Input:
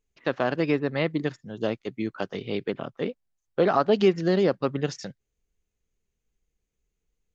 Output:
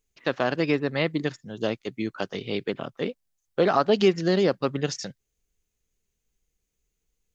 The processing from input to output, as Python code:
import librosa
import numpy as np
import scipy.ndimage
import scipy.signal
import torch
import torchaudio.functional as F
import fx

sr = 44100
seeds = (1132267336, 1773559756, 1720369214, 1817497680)

y = fx.high_shelf(x, sr, hz=3500.0, db=8.5)